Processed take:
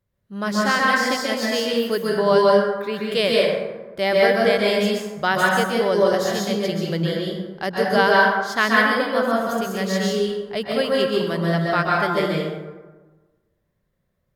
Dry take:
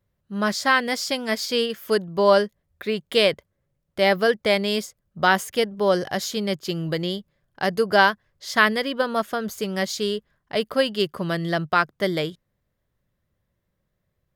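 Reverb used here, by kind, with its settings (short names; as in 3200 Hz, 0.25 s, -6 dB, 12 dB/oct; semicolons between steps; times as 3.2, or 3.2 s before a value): plate-style reverb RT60 1.3 s, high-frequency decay 0.45×, pre-delay 0.115 s, DRR -4 dB; gain -3 dB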